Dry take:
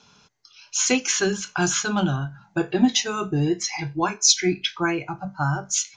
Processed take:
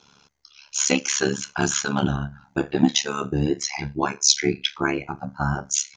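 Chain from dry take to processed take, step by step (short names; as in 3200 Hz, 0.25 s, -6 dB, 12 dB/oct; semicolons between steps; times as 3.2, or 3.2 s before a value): AM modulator 71 Hz, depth 90%; gain +3.5 dB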